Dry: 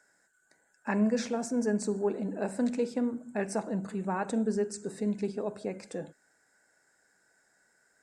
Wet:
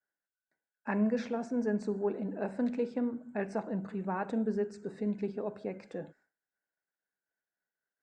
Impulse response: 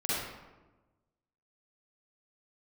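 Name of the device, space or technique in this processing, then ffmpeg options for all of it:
hearing-loss simulation: -af "lowpass=3100,agate=range=0.0224:threshold=0.00158:ratio=3:detection=peak,volume=0.75"

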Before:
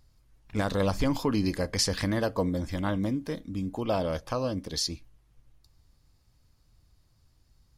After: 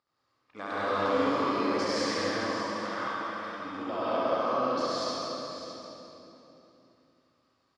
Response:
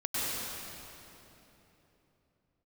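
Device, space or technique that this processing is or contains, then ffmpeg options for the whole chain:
station announcement: -filter_complex "[0:a]asettb=1/sr,asplit=3[s0][s1][s2];[s0]atrim=end=2.214[s3];[s1]atrim=start=2.21:end=3.53,asetpts=PTS-STARTPTS,afade=t=in:d=0.004:c=qsin,afade=t=out:st=1.316:d=0.004:c=qsin,highpass=890[s4];[s2]atrim=start=3.526[s5];[s3][s4]acrossfade=d=0.004:c1=hsin:c2=qsin[s6];[s6][s5]acrossfade=d=0.004:c1=qsin:c2=hsin,highpass=380,lowpass=4000,equalizer=f=1200:t=o:w=0.25:g=11.5,aecho=1:1:69.97|207:0.891|0.282,aecho=1:1:603:0.266[s7];[1:a]atrim=start_sample=2205[s8];[s7][s8]afir=irnorm=-1:irlink=0,volume=0.376"

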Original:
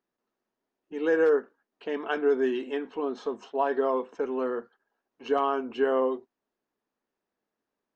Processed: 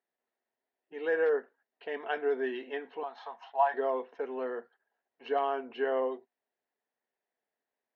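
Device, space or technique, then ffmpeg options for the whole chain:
kitchen radio: -filter_complex "[0:a]asettb=1/sr,asplit=3[s0][s1][s2];[s0]atrim=end=3.034[s3];[s1]atrim=start=3.03:end=3.74,asetpts=PTS-STARTPTS,afade=t=in:d=0.004:c=qsin,afade=t=out:st=0.706:d=0.004:c=qsin,lowshelf=f=560:t=q:w=3:g=-13.5[s4];[s2]atrim=start=3.736[s5];[s3][s4]acrossfade=d=0.004:c1=hsin:c2=qsin[s6];[s6][s5]acrossfade=d=0.004:c1=qsin:c2=hsin,highpass=190,equalizer=f=200:t=q:w=4:g=-8,equalizer=f=310:t=q:w=4:g=-9,equalizer=f=710:t=q:w=4:g=5,equalizer=f=1200:t=q:w=4:g=-6,equalizer=f=1900:t=q:w=4:g=7,lowpass=f=4400:w=0.5412,lowpass=f=4400:w=1.3066,volume=0.596"

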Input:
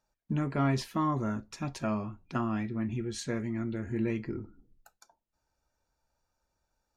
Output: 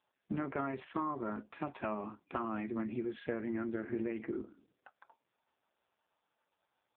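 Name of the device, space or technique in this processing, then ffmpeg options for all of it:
voicemail: -filter_complex "[0:a]asplit=3[s0][s1][s2];[s0]afade=t=out:st=2:d=0.02[s3];[s1]highpass=82,afade=t=in:st=2:d=0.02,afade=t=out:st=3.34:d=0.02[s4];[s2]afade=t=in:st=3.34:d=0.02[s5];[s3][s4][s5]amix=inputs=3:normalize=0,highpass=330,lowpass=2700,acompressor=threshold=0.0126:ratio=10,volume=2.11" -ar 8000 -c:a libopencore_amrnb -b:a 4750

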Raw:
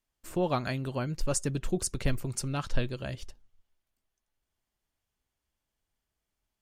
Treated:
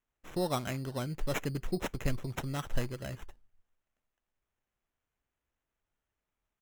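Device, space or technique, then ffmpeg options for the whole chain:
crushed at another speed: -af "asetrate=35280,aresample=44100,acrusher=samples=12:mix=1:aa=0.000001,asetrate=55125,aresample=44100,volume=0.668"

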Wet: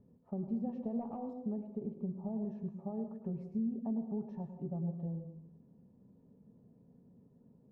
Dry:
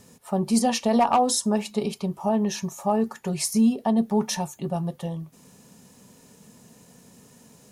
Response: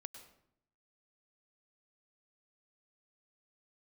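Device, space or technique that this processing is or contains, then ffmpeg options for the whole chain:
television next door: -filter_complex "[0:a]acompressor=threshold=0.0631:ratio=4,lowpass=400[s0];[1:a]atrim=start_sample=2205[s1];[s0][s1]afir=irnorm=-1:irlink=0,asettb=1/sr,asplit=3[s2][s3][s4];[s2]atrim=end=1.334[s5];[s3]atrim=start=1.33:end=2.43,asetpts=PTS-STARTPTS,afade=t=in:d=0.004:c=qsin,afade=t=out:st=1.096:d=0.004:c=qsin,lowpass=f=1300:p=1[s6];[s4]atrim=start=2.426[s7];[s5][s6]acrossfade=d=0.004:c1=hsin:c2=qsin[s8];[s8][s7]acrossfade=d=0.004:c1=qsin:c2=hsin,volume=0.708"

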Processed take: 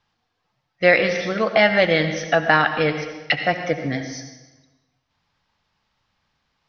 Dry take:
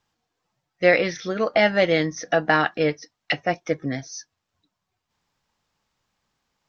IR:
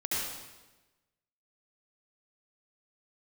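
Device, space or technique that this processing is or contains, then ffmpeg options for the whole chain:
ducked reverb: -filter_complex "[0:a]lowpass=f=5200:w=0.5412,lowpass=f=5200:w=1.3066,equalizer=f=350:w=1:g=-5,asplit=3[s0][s1][s2];[1:a]atrim=start_sample=2205[s3];[s1][s3]afir=irnorm=-1:irlink=0[s4];[s2]apad=whole_len=294843[s5];[s4][s5]sidechaincompress=threshold=0.0562:ratio=3:attack=48:release=257,volume=0.282[s6];[s0][s6]amix=inputs=2:normalize=0,volume=1.41"

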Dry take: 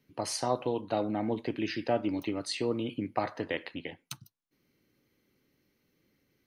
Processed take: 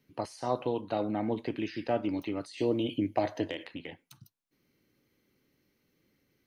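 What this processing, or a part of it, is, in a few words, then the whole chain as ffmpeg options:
de-esser from a sidechain: -filter_complex "[0:a]asplit=2[s0][s1];[s1]highpass=5000,apad=whole_len=285179[s2];[s0][s2]sidechaincompress=threshold=0.00282:ratio=5:attack=2.3:release=46,asettb=1/sr,asplit=3[s3][s4][s5];[s3]atrim=end=2.574[s6];[s4]atrim=start=2.57:end=3.64,asetpts=PTS-STARTPTS,afade=t=in:d=0.004:c=qsin,afade=t=out:st=1.066:d=0.004:c=qsin,equalizer=f=100:t=o:w=0.33:g=5,equalizer=f=315:t=o:w=0.33:g=7,equalizer=f=630:t=o:w=0.33:g=7,equalizer=f=1250:t=o:w=0.33:g=-11,equalizer=f=3150:t=o:w=0.33:g=8,equalizer=f=6300:t=o:w=0.33:g=8,equalizer=f=12500:t=o:w=0.33:g=9[s7];[s5]atrim=start=3.636[s8];[s6][s7]acrossfade=d=0.004:c1=hsin:c2=qsin[s9];[s9][s8]acrossfade=d=0.004:c1=qsin:c2=hsin"

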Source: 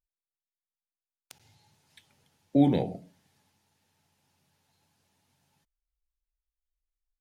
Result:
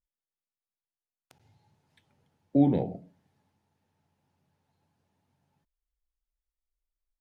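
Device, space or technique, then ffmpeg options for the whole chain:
through cloth: -af "highshelf=f=2000:g=-15"

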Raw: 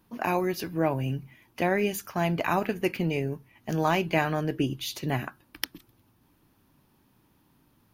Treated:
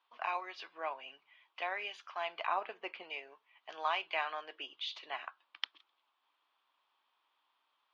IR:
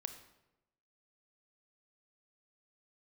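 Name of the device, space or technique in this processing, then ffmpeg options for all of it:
phone earpiece: -filter_complex "[0:a]highpass=1000,highpass=410,equalizer=f=690:t=q:w=4:g=3,equalizer=f=1100:t=q:w=4:g=6,equalizer=f=1700:t=q:w=4:g=-4,equalizer=f=3300:t=q:w=4:g=6,lowpass=f=4000:w=0.5412,lowpass=f=4000:w=1.3066,asettb=1/sr,asplit=3[s0][s1][s2];[s0]atrim=end=2.464[s3];[s1]atrim=start=2.46:end=3.03,asetpts=PTS-STARTPTS,afade=t=in:d=0.004:c=qsin,afade=t=out:st=0.566:d=0.004:c=qsin,tiltshelf=f=1100:g=7[s4];[s2]atrim=start=3.026[s5];[s3][s4]acrossfade=d=0.004:c1=hsin:c2=qsin[s6];[s6][s5]acrossfade=d=0.004:c1=qsin:c2=hsin,volume=0.501"

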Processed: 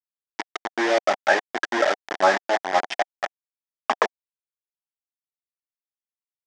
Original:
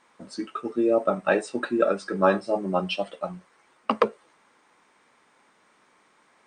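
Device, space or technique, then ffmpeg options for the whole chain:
hand-held game console: -af "acrusher=bits=3:mix=0:aa=0.000001,highpass=460,equalizer=f=500:t=q:w=4:g=-8,equalizer=f=740:t=q:w=4:g=8,equalizer=f=1200:t=q:w=4:g=-5,equalizer=f=1800:t=q:w=4:g=6,equalizer=f=2700:t=q:w=4:g=-6,equalizer=f=4200:t=q:w=4:g=-8,lowpass=f=5400:w=0.5412,lowpass=f=5400:w=1.3066,volume=1.5"

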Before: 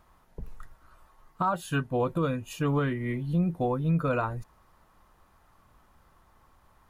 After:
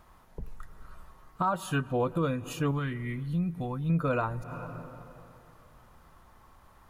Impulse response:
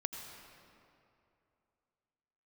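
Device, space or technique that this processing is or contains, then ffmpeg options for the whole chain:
ducked reverb: -filter_complex "[0:a]asettb=1/sr,asplit=3[s0][s1][s2];[s0]atrim=end=2.714[s3];[s1]atrim=start=2.71:end=3.9,asetpts=PTS-STARTPTS,afade=t=in:d=0.004:c=qsin,afade=t=out:st=1.186:d=0.004:c=qsin,equalizer=f=520:w=0.7:g=-11[s4];[s2]atrim=start=3.896[s5];[s3][s4]acrossfade=d=0.004:c1=hsin:c2=qsin[s6];[s6][s5]acrossfade=d=0.004:c1=qsin:c2=hsin,asplit=3[s7][s8][s9];[1:a]atrim=start_sample=2205[s10];[s8][s10]afir=irnorm=-1:irlink=0[s11];[s9]apad=whole_len=303898[s12];[s11][s12]sidechaincompress=threshold=0.00316:ratio=5:attack=30:release=102,volume=0.891[s13];[s7][s13]amix=inputs=2:normalize=0,volume=0.841"

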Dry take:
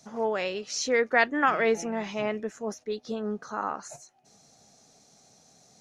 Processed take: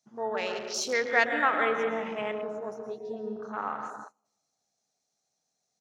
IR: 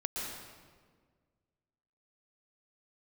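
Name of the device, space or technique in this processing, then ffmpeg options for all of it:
keyed gated reverb: -filter_complex "[0:a]lowshelf=f=430:g=-10.5,asplit=2[s0][s1];[s1]adelay=163,lowpass=f=980:p=1,volume=0.316,asplit=2[s2][s3];[s3]adelay=163,lowpass=f=980:p=1,volume=0.52,asplit=2[s4][s5];[s5]adelay=163,lowpass=f=980:p=1,volume=0.52,asplit=2[s6][s7];[s7]adelay=163,lowpass=f=980:p=1,volume=0.52,asplit=2[s8][s9];[s9]adelay=163,lowpass=f=980:p=1,volume=0.52,asplit=2[s10][s11];[s11]adelay=163,lowpass=f=980:p=1,volume=0.52[s12];[s0][s2][s4][s6][s8][s10][s12]amix=inputs=7:normalize=0,asplit=3[s13][s14][s15];[1:a]atrim=start_sample=2205[s16];[s14][s16]afir=irnorm=-1:irlink=0[s17];[s15]apad=whole_len=299306[s18];[s17][s18]sidechaingate=range=0.126:threshold=0.00282:ratio=16:detection=peak,volume=0.794[s19];[s13][s19]amix=inputs=2:normalize=0,afwtdn=0.02,asettb=1/sr,asplit=3[s20][s21][s22];[s20]atrim=end=1.574[s23];[s21]atrim=start=1.57:end=2.12,asetpts=PTS-STARTPTS,afade=t=in:d=0.004:c=qsin,afade=t=out:st=0.546:d=0.004:c=qsin,highshelf=f=8400:g=-5.5[s24];[s22]atrim=start=2.116[s25];[s23][s24]acrossfade=d=0.004:c1=hsin:c2=qsin[s26];[s26][s25]acrossfade=d=0.004:c1=qsin:c2=hsin,volume=0.562"

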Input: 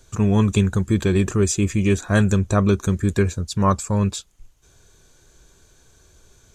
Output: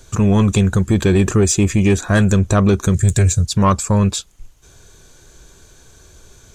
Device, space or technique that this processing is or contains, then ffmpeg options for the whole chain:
soft clipper into limiter: -filter_complex "[0:a]asettb=1/sr,asplit=3[s0][s1][s2];[s0]atrim=end=2.944[s3];[s1]atrim=start=2.94:end=3.46,asetpts=PTS-STARTPTS,afade=t=in:d=0.004:c=qsin,afade=t=out:st=0.516:d=0.004:c=qsin,equalizer=f=125:t=o:w=1:g=10,equalizer=f=250:t=o:w=1:g=-9,equalizer=f=1000:t=o:w=1:g=-9,equalizer=f=8000:t=o:w=1:g=12[s4];[s2]atrim=start=3.456[s5];[s3][s4]acrossfade=d=0.004:c1=hsin:c2=qsin[s6];[s6][s5]acrossfade=d=0.004:c1=qsin:c2=hsin,asoftclip=type=tanh:threshold=0.282,alimiter=limit=0.188:level=0:latency=1:release=199,volume=2.51"

